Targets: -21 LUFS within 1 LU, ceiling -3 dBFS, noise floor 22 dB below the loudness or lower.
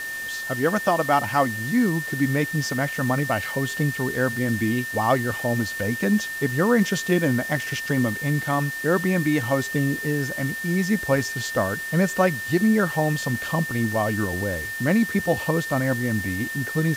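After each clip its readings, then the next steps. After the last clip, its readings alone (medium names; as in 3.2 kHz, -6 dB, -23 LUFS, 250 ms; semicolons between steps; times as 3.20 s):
steady tone 1.8 kHz; tone level -29 dBFS; noise floor -31 dBFS; noise floor target -45 dBFS; loudness -23.0 LUFS; peak level -7.0 dBFS; loudness target -21.0 LUFS
-> band-stop 1.8 kHz, Q 30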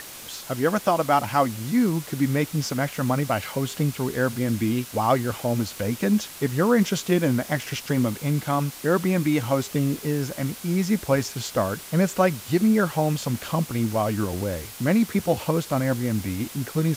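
steady tone not found; noise floor -40 dBFS; noise floor target -46 dBFS
-> noise reduction 6 dB, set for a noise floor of -40 dBFS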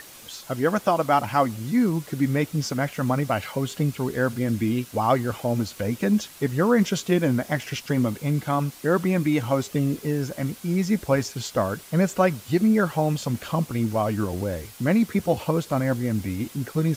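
noise floor -45 dBFS; noise floor target -47 dBFS
-> noise reduction 6 dB, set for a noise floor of -45 dBFS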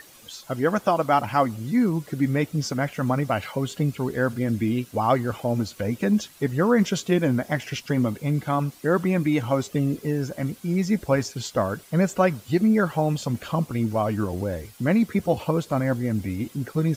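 noise floor -50 dBFS; loudness -24.5 LUFS; peak level -7.5 dBFS; loudness target -21.0 LUFS
-> trim +3.5 dB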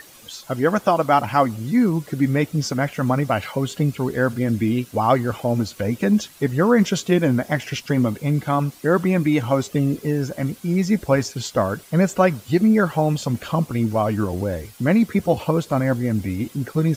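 loudness -21.0 LUFS; peak level -4.0 dBFS; noise floor -46 dBFS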